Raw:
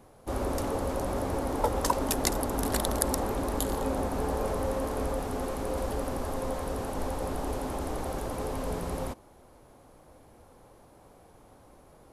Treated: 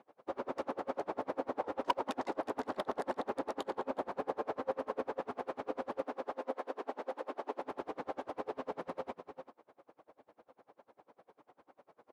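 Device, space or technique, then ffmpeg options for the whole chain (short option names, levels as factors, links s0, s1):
helicopter radio: -filter_complex "[0:a]asettb=1/sr,asplit=3[s0][s1][s2];[s0]atrim=end=6.024[s3];[s1]atrim=start=6.02:end=7.59,asetpts=PTS-STARTPTS,afade=t=in:d=0.004:c=qsin,afade=t=out:st=1.566:d=0.004:c=qsin,highpass=f=240:w=0.5412,highpass=f=240:w=1.3066[s4];[s2]atrim=start=7.586[s5];[s3][s4]acrossfade=d=0.004:c1=hsin:c2=qsin[s6];[s6][s5]acrossfade=d=0.004:c1=qsin:c2=hsin,highpass=340,lowpass=2600,aecho=1:1:364:0.376,aeval=exprs='val(0)*pow(10,-32*(0.5-0.5*cos(2*PI*10*n/s))/20)':c=same,asoftclip=type=hard:threshold=0.0794,volume=1.12"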